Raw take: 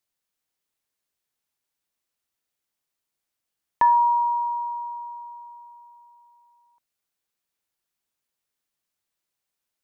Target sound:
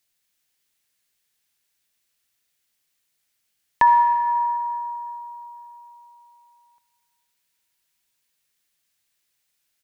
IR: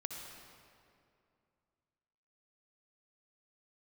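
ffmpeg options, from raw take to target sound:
-filter_complex "[0:a]asplit=2[a][b];[b]firequalizer=gain_entry='entry(190,0);entry(390,-16);entry(1600,9)':delay=0.05:min_phase=1[c];[1:a]atrim=start_sample=2205[d];[c][d]afir=irnorm=-1:irlink=0,volume=-2.5dB[e];[a][e]amix=inputs=2:normalize=0,volume=2dB"

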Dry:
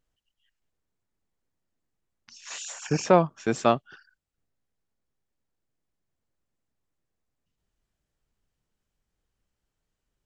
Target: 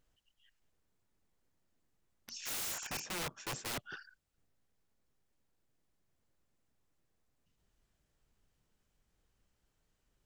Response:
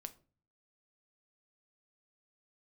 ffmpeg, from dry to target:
-af "areverse,acompressor=threshold=-30dB:ratio=16,areverse,aeval=exprs='(mod(66.8*val(0)+1,2)-1)/66.8':c=same,volume=3dB"

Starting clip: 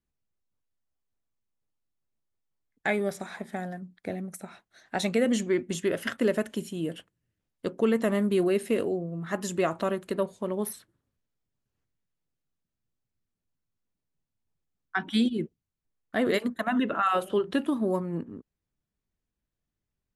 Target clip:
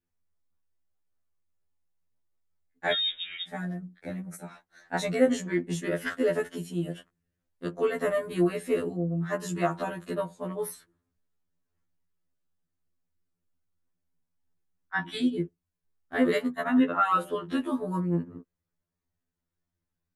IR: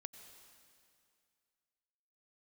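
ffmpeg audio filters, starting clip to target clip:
-filter_complex "[0:a]asplit=2[a][b];[b]equalizer=f=2.1k:w=0.64:g=6.5[c];[1:a]atrim=start_sample=2205,atrim=end_sample=3087,lowpass=2.2k[d];[c][d]afir=irnorm=-1:irlink=0,volume=-4dB[e];[a][e]amix=inputs=2:normalize=0,asettb=1/sr,asplit=3[f][g][h];[f]atrim=end=2.924[i];[g]atrim=start=2.92:end=3.48,asetpts=PTS-STARTPTS,afade=t=in:d=0.004:c=qsin,afade=t=out:st=0.556:d=0.004:c=qsin,lowpass=f=3.3k:t=q:w=0.5098,lowpass=f=3.3k:t=q:w=0.6013,lowpass=f=3.3k:t=q:w=0.9,lowpass=f=3.3k:t=q:w=2.563,afreqshift=-3900[j];[h]atrim=start=3.476[k];[i][j]acrossfade=d=0.004:c1=hsin:c2=qsin[l];[l][k]acrossfade=d=0.004:c1=qsin:c2=hsin,afftfilt=real='re*2*eq(mod(b,4),0)':imag='im*2*eq(mod(b,4),0)':win_size=2048:overlap=0.75"

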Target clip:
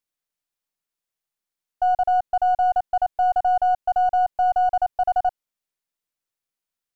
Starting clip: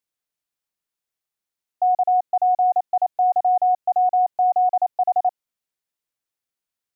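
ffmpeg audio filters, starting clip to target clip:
-af "aeval=exprs='if(lt(val(0),0),0.708*val(0),val(0))':c=same"

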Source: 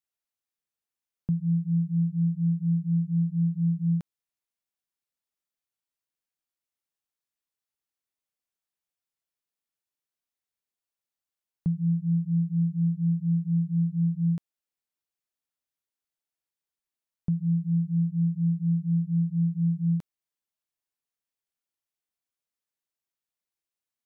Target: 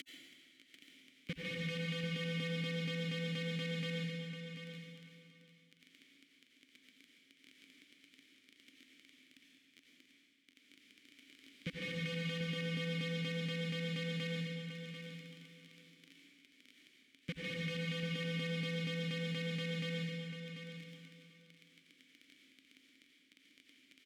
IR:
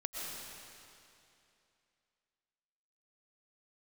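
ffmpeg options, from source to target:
-filter_complex "[0:a]aeval=exprs='val(0)+0.5*0.00596*sgn(val(0))':c=same,lowshelf=f=64:g=-6,aecho=1:1:1:0.78,adynamicequalizer=threshold=0.0224:dfrequency=190:dqfactor=1.3:tfrequency=190:tqfactor=1.3:attack=5:release=100:ratio=0.375:range=3:mode=cutabove:tftype=bell,acompressor=mode=upward:threshold=-35dB:ratio=2.5,asplit=2[a][b];[b]alimiter=level_in=3dB:limit=-24dB:level=0:latency=1,volume=-3dB,volume=0dB[c];[a][c]amix=inputs=2:normalize=0,acompressor=threshold=-32dB:ratio=6,acrossover=split=100|210[d][e][f];[e]asoftclip=type=tanh:threshold=-30.5dB[g];[d][g][f]amix=inputs=3:normalize=0,acrusher=bits=4:mix=0:aa=0.000001,asplit=3[h][i][j];[h]bandpass=f=270:t=q:w=8,volume=0dB[k];[i]bandpass=f=2.29k:t=q:w=8,volume=-6dB[l];[j]bandpass=f=3.01k:t=q:w=8,volume=-9dB[m];[k][l][m]amix=inputs=3:normalize=0,aecho=1:1:741|1482:0.355|0.0532[n];[1:a]atrim=start_sample=2205,asetrate=61740,aresample=44100[o];[n][o]afir=irnorm=-1:irlink=0,volume=15dB"

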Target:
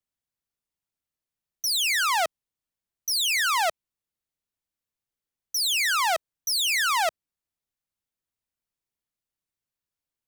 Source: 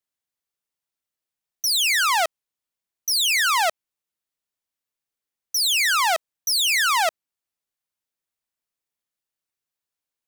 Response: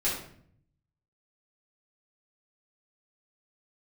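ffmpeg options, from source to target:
-af "lowshelf=f=240:g=11,volume=-4dB"

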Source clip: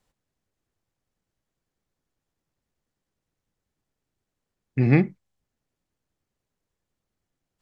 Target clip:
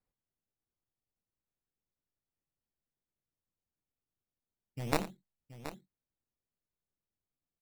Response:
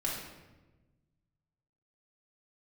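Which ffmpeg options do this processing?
-filter_complex "[0:a]aemphasis=mode=reproduction:type=75fm,acrusher=samples=13:mix=1:aa=0.000001:lfo=1:lforange=20.8:lforate=0.3,aeval=exprs='0.562*(cos(1*acos(clip(val(0)/0.562,-1,1)))-cos(1*PI/2))+0.282*(cos(3*acos(clip(val(0)/0.562,-1,1)))-cos(3*PI/2))':c=same,asplit=2[a][b];[b]aecho=0:1:86|726:0.178|0.237[c];[a][c]amix=inputs=2:normalize=0,volume=-9dB"

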